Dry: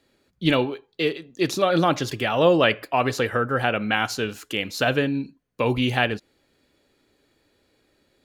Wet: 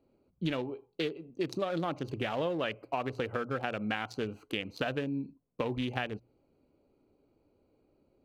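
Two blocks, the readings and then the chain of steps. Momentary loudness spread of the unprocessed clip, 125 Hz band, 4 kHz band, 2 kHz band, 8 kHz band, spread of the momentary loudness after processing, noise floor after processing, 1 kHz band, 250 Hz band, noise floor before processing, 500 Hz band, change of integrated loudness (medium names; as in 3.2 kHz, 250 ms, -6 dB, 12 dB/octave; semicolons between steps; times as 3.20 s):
8 LU, -11.0 dB, -13.5 dB, -13.5 dB, under -20 dB, 5 LU, -73 dBFS, -12.5 dB, -10.5 dB, -68 dBFS, -12.0 dB, -12.0 dB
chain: local Wiener filter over 25 samples; hum notches 60/120 Hz; compression 6:1, threshold -28 dBFS, peak gain reduction 14.5 dB; trim -2 dB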